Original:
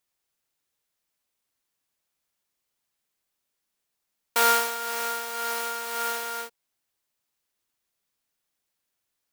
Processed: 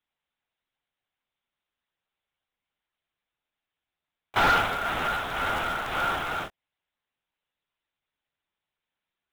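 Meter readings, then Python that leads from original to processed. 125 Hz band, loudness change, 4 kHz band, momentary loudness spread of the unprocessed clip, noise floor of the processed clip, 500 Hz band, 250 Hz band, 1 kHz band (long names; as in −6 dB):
can't be measured, 0.0 dB, −0.5 dB, 12 LU, below −85 dBFS, −0.5 dB, +9.0 dB, +1.5 dB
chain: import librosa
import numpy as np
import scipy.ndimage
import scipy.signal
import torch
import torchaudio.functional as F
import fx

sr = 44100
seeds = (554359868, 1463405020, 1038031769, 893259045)

p1 = fx.lpc_vocoder(x, sr, seeds[0], excitation='whisper', order=10)
p2 = fx.quant_companded(p1, sr, bits=4)
p3 = p1 + (p2 * 10.0 ** (-3.5 / 20.0))
p4 = fx.low_shelf(p3, sr, hz=210.0, db=-7.0)
p5 = 10.0 ** (-15.0 / 20.0) * np.tanh(p4 / 10.0 ** (-15.0 / 20.0))
y = fx.buffer_crackle(p5, sr, first_s=0.94, period_s=0.14, block=512, kind='repeat')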